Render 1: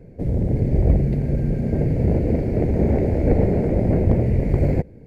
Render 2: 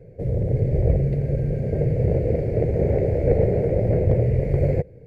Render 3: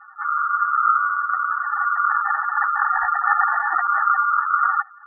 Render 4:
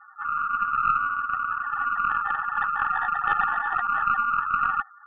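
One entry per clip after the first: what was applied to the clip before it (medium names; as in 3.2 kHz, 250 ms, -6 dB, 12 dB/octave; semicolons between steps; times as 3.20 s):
graphic EQ 125/250/500/1000/2000 Hz +8/-9/+12/-6/+4 dB; trim -5.5 dB
square wave that keeps the level; ring modulator 1.3 kHz; spectral gate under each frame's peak -10 dB strong
tracing distortion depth 0.03 ms; trim -5 dB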